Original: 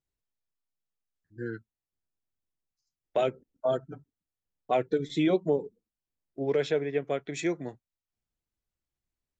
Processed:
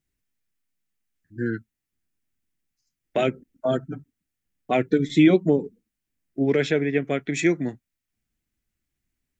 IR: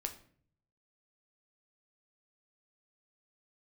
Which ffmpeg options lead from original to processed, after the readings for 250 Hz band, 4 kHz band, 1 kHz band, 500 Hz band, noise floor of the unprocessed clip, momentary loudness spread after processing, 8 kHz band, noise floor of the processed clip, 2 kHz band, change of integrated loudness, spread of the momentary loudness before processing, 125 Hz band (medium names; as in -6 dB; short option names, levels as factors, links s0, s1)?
+10.5 dB, +6.0 dB, +3.0 dB, +4.0 dB, under -85 dBFS, 16 LU, no reading, -84 dBFS, +10.0 dB, +7.0 dB, 17 LU, +10.0 dB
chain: -af "equalizer=f=250:t=o:w=1:g=6,equalizer=f=500:t=o:w=1:g=-6,equalizer=f=1000:t=o:w=1:g=-7,equalizer=f=2000:t=o:w=1:g=5,equalizer=f=4000:t=o:w=1:g=-4,volume=2.66"